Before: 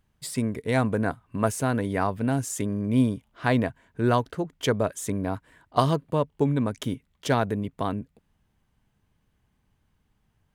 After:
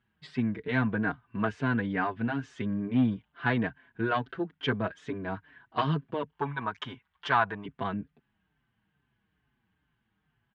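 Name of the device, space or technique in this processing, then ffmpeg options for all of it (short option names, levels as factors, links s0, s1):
barber-pole flanger into a guitar amplifier: -filter_complex "[0:a]asplit=2[s0][s1];[s1]adelay=5.5,afreqshift=-2.3[s2];[s0][s2]amix=inputs=2:normalize=1,asoftclip=type=tanh:threshold=0.158,highpass=76,equalizer=f=88:t=q:w=4:g=-9,equalizer=f=550:t=q:w=4:g=-9,equalizer=f=1600:t=q:w=4:g=8,equalizer=f=3000:t=q:w=4:g=3,lowpass=f=3600:w=0.5412,lowpass=f=3600:w=1.3066,asettb=1/sr,asplit=3[s3][s4][s5];[s3]atrim=end=6.334[s6];[s4]atrim=start=6.33:end=7.66,asetpts=PTS-STARTPTS,afade=t=in:d=0.004:c=qsin,afade=t=out:st=1.326:d=0.004:c=qsin,equalizer=f=125:t=o:w=1:g=-6,equalizer=f=250:t=o:w=1:g=-11,equalizer=f=500:t=o:w=1:g=-3,equalizer=f=1000:t=o:w=1:g=11,equalizer=f=8000:t=o:w=1:g=7[s7];[s5]atrim=start=7.656[s8];[s6][s7]acrossfade=d=0.004:c1=hsin:c2=qsin[s9];[s9][s8]acrossfade=d=0.004:c1=qsin:c2=hsin"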